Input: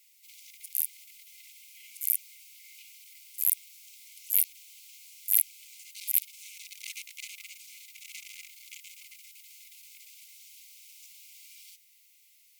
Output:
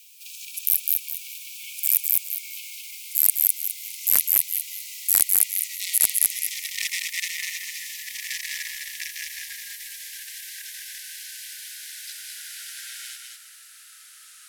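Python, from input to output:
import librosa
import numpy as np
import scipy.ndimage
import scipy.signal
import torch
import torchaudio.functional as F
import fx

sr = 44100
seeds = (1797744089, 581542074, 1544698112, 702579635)

p1 = fx.speed_glide(x, sr, from_pct=113, to_pct=61)
p2 = p1 + fx.echo_feedback(p1, sr, ms=206, feedback_pct=27, wet_db=-3.5, dry=0)
p3 = fx.fold_sine(p2, sr, drive_db=10, ceiling_db=-1.0)
y = F.gain(torch.from_numpy(p3), -1.5).numpy()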